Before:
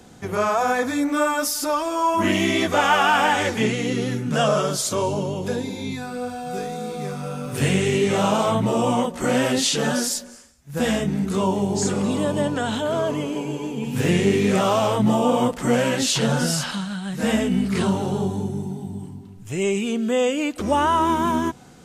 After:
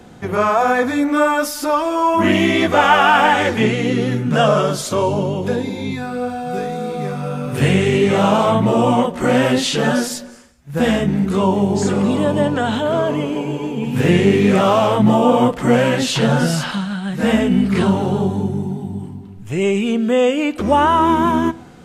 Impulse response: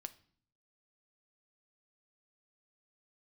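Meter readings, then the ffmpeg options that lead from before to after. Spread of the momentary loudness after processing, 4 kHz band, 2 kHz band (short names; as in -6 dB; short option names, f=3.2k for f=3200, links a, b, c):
10 LU, +2.5 dB, +5.0 dB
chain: -filter_complex "[0:a]asplit=2[a][b];[1:a]atrim=start_sample=2205,lowpass=4k[c];[b][c]afir=irnorm=-1:irlink=0,volume=6dB[d];[a][d]amix=inputs=2:normalize=0,volume=-1dB"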